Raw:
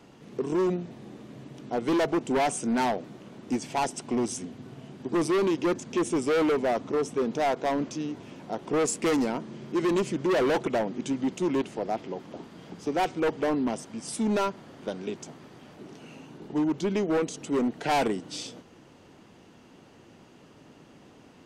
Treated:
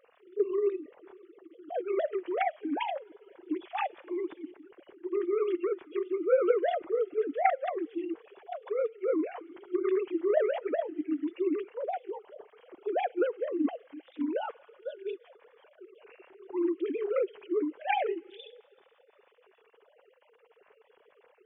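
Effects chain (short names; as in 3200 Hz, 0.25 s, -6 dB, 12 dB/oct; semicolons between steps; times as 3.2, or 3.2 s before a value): sine-wave speech; thin delay 62 ms, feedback 83%, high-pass 2200 Hz, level -24 dB; formant-preserving pitch shift +1.5 st; gain +1 dB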